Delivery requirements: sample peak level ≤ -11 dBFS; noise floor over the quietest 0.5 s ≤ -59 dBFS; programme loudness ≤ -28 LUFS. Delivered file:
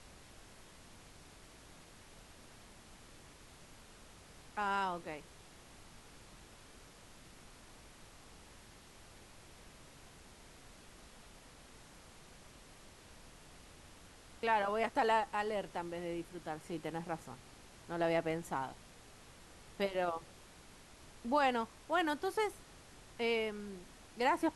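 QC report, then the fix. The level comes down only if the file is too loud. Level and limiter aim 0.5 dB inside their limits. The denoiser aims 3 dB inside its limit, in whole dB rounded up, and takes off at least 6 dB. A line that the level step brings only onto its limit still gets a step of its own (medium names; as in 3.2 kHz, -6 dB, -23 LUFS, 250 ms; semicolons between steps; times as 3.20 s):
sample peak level -19.5 dBFS: pass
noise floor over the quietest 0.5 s -57 dBFS: fail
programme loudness -37.0 LUFS: pass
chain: noise reduction 6 dB, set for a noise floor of -57 dBFS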